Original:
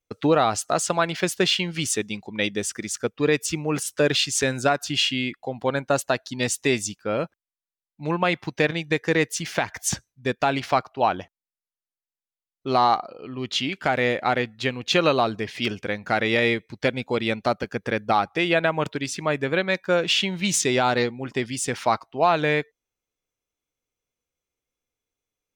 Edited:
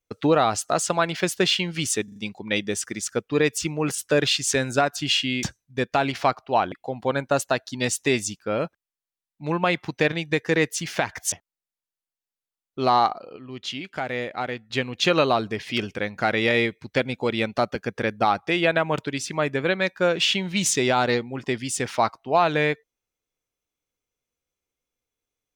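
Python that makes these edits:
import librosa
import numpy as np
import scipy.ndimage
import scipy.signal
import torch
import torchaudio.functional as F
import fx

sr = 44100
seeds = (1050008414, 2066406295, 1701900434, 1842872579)

y = fx.edit(x, sr, fx.stutter(start_s=2.04, slice_s=0.04, count=4),
    fx.move(start_s=9.91, length_s=1.29, to_s=5.31),
    fx.clip_gain(start_s=13.24, length_s=1.34, db=-6.5), tone=tone)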